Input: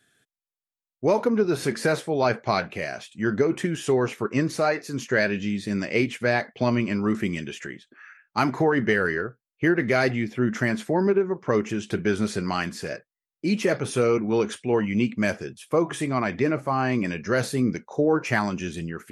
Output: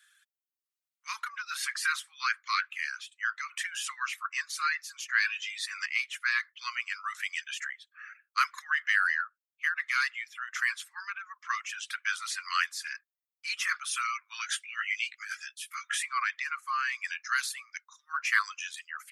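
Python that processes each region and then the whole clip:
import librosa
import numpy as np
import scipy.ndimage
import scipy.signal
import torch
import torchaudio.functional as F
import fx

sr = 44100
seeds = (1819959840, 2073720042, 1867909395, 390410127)

y = fx.chain(x, sr, fx.highpass(hz=1000.0, slope=24),
    fx.high_shelf(hz=5500.0, db=-5.5), at=(2.55, 3.51))
y = fx.chain(y, sr, fx.hum_notches(base_hz=50, count=10),
    fx.comb(ms=7.2, depth=0.49),
    fx.env_flatten(amount_pct=50), at=(5.24, 5.86))
y = fx.chain(y, sr, fx.peak_eq(hz=950.0, db=-9.0, octaves=0.27),
    fx.env_flatten(amount_pct=50), at=(8.58, 9.24))
y = fx.chain(y, sr, fx.cheby1_highpass(hz=1300.0, order=6),
    fx.over_compress(threshold_db=-34.0, ratio=-0.5),
    fx.doubler(ms=18.0, db=-3), at=(14.41, 16.03))
y = scipy.signal.sosfilt(scipy.signal.butter(16, 1100.0, 'highpass', fs=sr, output='sos'), y)
y = fx.dereverb_blind(y, sr, rt60_s=0.75)
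y = fx.rider(y, sr, range_db=3, speed_s=2.0)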